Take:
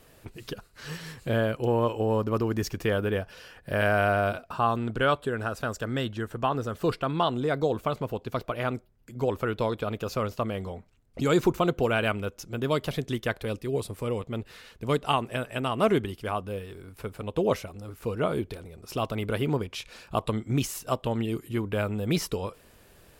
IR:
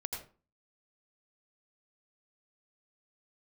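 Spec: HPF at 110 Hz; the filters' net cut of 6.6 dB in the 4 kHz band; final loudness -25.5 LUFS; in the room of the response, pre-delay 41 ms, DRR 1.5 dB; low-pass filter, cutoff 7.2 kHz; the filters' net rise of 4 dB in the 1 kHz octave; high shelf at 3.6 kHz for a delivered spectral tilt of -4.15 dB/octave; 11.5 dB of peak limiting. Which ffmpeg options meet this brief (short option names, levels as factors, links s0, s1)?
-filter_complex "[0:a]highpass=110,lowpass=7200,equalizer=f=1000:t=o:g=6,highshelf=f=3600:g=-4.5,equalizer=f=4000:t=o:g=-7,alimiter=limit=0.106:level=0:latency=1,asplit=2[s0][s1];[1:a]atrim=start_sample=2205,adelay=41[s2];[s1][s2]afir=irnorm=-1:irlink=0,volume=0.794[s3];[s0][s3]amix=inputs=2:normalize=0,volume=1.78"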